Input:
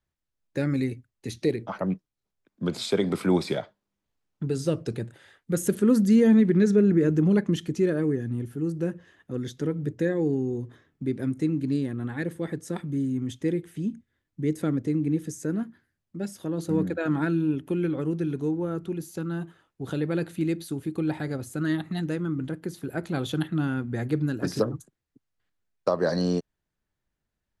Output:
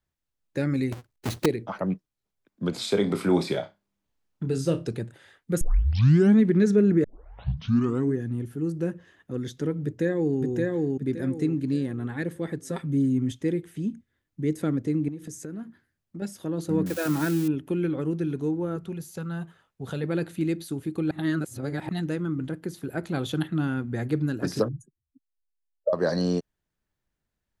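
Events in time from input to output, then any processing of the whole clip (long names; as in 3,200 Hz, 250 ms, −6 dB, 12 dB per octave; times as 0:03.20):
0:00.92–0:01.46: each half-wave held at its own peak
0:02.70–0:04.86: flutter between parallel walls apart 5.1 metres, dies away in 0.2 s
0:05.61: tape start 0.75 s
0:07.04: tape start 1.13 s
0:09.84–0:10.40: delay throw 570 ms, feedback 30%, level −1.5 dB
0:12.64–0:13.32: comb filter 7.5 ms
0:15.08–0:16.22: downward compressor 5 to 1, threshold −33 dBFS
0:16.86–0:17.48: spike at every zero crossing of −24 dBFS
0:18.76–0:20.04: parametric band 320 Hz −14 dB 0.26 octaves
0:21.11–0:21.89: reverse
0:24.68–0:25.93: expanding power law on the bin magnitudes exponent 3.2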